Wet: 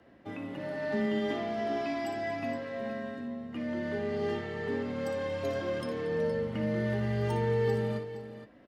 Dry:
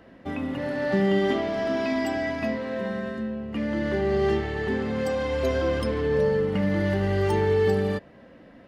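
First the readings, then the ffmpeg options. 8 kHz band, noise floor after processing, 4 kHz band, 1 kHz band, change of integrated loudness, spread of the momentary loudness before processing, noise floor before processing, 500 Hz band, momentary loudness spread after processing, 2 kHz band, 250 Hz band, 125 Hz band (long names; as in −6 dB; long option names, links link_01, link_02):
can't be measured, −56 dBFS, −7.5 dB, −6.0 dB, −7.5 dB, 8 LU, −50 dBFS, −7.5 dB, 9 LU, −7.5 dB, −7.5 dB, −6.0 dB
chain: -af "afreqshift=21,aecho=1:1:59|231|467:0.376|0.133|0.266,volume=-8.5dB"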